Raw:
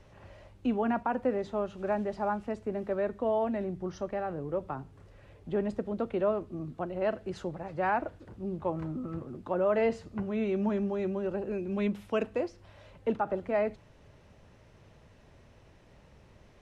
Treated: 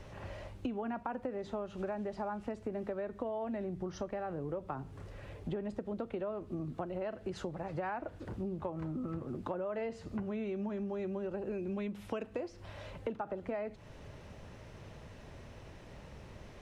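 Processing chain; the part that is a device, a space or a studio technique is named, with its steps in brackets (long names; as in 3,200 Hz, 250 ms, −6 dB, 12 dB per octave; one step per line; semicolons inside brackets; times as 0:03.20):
serial compression, leveller first (downward compressor 2 to 1, threshold −31 dBFS, peak gain reduction 5 dB; downward compressor 6 to 1, threshold −42 dBFS, peak gain reduction 14 dB)
level +6.5 dB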